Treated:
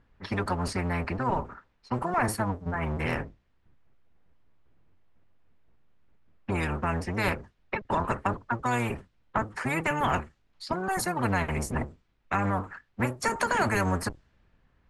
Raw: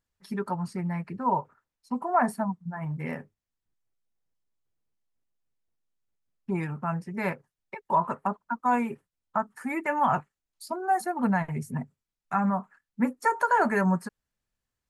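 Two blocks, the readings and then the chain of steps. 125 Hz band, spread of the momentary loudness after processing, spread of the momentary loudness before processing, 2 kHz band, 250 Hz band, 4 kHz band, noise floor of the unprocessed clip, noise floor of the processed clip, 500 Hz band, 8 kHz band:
+3.0 dB, 9 LU, 12 LU, +2.5 dB, -2.5 dB, no reading, under -85 dBFS, -69 dBFS, +0.5 dB, +9.0 dB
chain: octave divider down 1 oct, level +2 dB; treble shelf 6.2 kHz -8 dB; in parallel at +1.5 dB: compression, threshold -31 dBFS, peak gain reduction 14 dB; on the sum: level-controlled noise filter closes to 2.4 kHz, open at -19 dBFS; spectrum-flattening compressor 2:1; trim -4.5 dB

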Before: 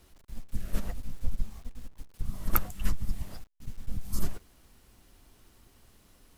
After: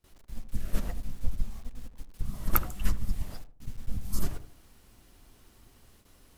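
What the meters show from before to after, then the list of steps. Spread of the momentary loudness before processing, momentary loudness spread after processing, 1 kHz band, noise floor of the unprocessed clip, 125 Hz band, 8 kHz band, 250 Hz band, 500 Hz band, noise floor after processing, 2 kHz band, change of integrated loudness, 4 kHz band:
19 LU, 19 LU, +1.0 dB, -61 dBFS, +1.5 dB, +1.0 dB, +1.0 dB, +1.0 dB, -60 dBFS, +1.0 dB, +1.0 dB, +1.0 dB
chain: filtered feedback delay 78 ms, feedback 39%, low-pass 860 Hz, level -10 dB; gate with hold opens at -49 dBFS; trim +1 dB

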